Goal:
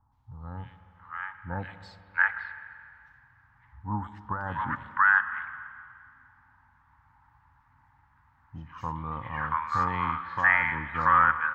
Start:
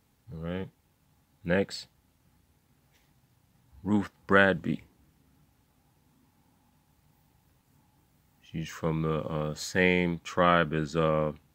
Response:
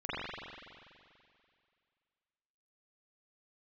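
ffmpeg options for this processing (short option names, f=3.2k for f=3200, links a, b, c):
-filter_complex "[0:a]firequalizer=gain_entry='entry(110,0);entry(160,-14);entry(270,-12);entry(400,-23);entry(580,-15);entry(910,12);entry(1700,9);entry(2500,-7);entry(3900,-14);entry(8400,-28)':delay=0.05:min_phase=1,alimiter=limit=-12dB:level=0:latency=1:release=34,acrossover=split=860|3200[a][b][c];[c]adelay=120[d];[b]adelay=680[e];[a][e][d]amix=inputs=3:normalize=0,asplit=2[f][g];[1:a]atrim=start_sample=2205,highshelf=f=4.5k:g=10,adelay=64[h];[g][h]afir=irnorm=-1:irlink=0,volume=-20.5dB[i];[f][i]amix=inputs=2:normalize=0,volume=4dB"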